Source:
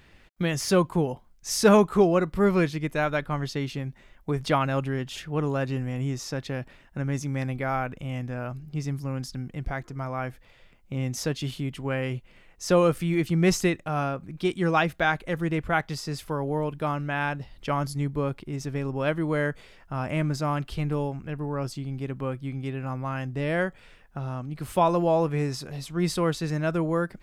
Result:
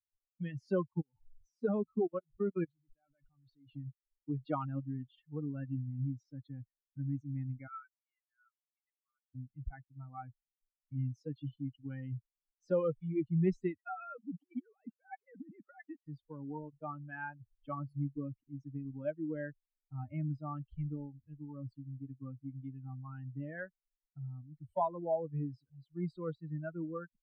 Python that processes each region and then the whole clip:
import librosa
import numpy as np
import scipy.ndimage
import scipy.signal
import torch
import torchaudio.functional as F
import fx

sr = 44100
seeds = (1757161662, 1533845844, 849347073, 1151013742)

y = fx.chain(x, sr, fx.zero_step(step_db=-28.0),
    fx.level_steps(step_db=20), at=(0.93, 3.74))
y = fx.chain(y, sr, fx.steep_highpass(hz=1100.0, slope=72),
    fx.air_absorb(metres=390.0), at=(7.67, 9.35))
y = fx.chain(y, sr, fx.sine_speech(),
    fx.over_compress(threshold_db=-34.0, ratio=-1.0), at=(13.78, 16.06))
y = fx.bin_expand(y, sr, power=3.0)
y = scipy.signal.sosfilt(scipy.signal.bessel(2, 870.0, 'lowpass', norm='mag', fs=sr, output='sos'), y)
y = fx.band_squash(y, sr, depth_pct=40)
y = F.gain(torch.from_numpy(y), -1.0).numpy()